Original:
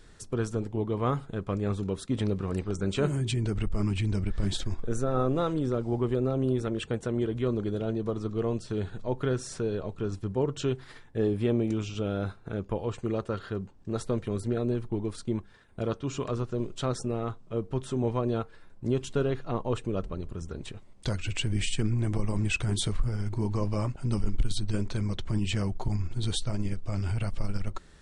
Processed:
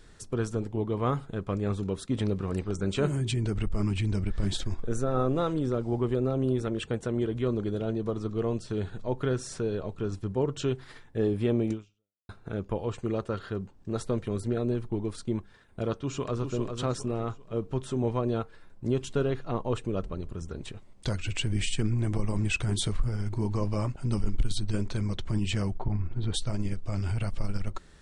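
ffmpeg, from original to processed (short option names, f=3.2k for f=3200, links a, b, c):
-filter_complex "[0:a]asplit=2[a][b];[b]afade=t=in:st=15.97:d=0.01,afade=t=out:st=16.52:d=0.01,aecho=0:1:400|800|1200|1600:0.501187|0.175416|0.0613954|0.0214884[c];[a][c]amix=inputs=2:normalize=0,asplit=3[d][e][f];[d]afade=t=out:st=25.78:d=0.02[g];[e]lowpass=2.1k,afade=t=in:st=25.78:d=0.02,afade=t=out:st=26.33:d=0.02[h];[f]afade=t=in:st=26.33:d=0.02[i];[g][h][i]amix=inputs=3:normalize=0,asplit=2[j][k];[j]atrim=end=12.29,asetpts=PTS-STARTPTS,afade=t=out:st=11.72:d=0.57:c=exp[l];[k]atrim=start=12.29,asetpts=PTS-STARTPTS,afade=t=in:d=0.004:c=hsin[m];[l][m]concat=n=2:v=0:a=1"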